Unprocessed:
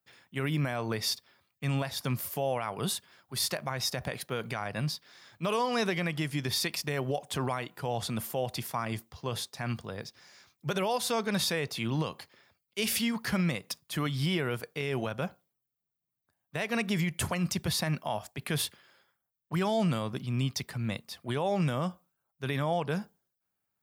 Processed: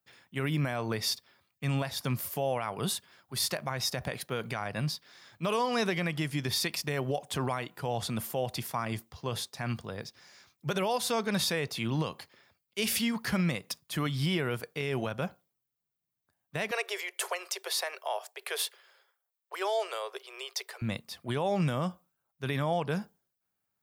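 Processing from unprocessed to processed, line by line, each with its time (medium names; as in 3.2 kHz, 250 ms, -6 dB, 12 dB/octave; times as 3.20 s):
16.71–20.82 s: steep high-pass 380 Hz 96 dB/octave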